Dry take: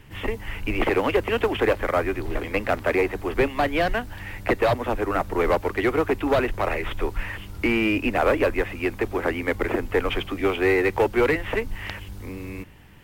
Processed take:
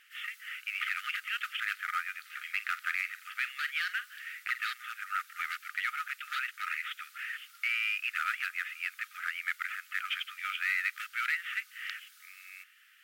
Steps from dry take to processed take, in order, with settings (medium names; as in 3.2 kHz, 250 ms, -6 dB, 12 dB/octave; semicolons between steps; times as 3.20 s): 2.38–4.64 s: doubling 47 ms -14 dB; brick-wall FIR high-pass 1.2 kHz; trim -4 dB